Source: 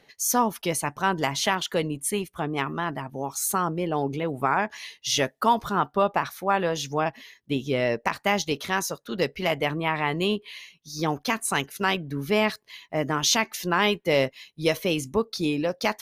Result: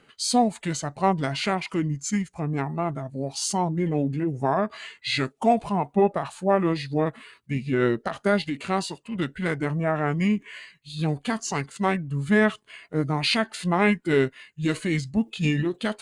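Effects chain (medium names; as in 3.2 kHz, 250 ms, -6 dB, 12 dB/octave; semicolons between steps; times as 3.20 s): harmonic-percussive split percussive -7 dB; formant shift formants -6 st; trim +3.5 dB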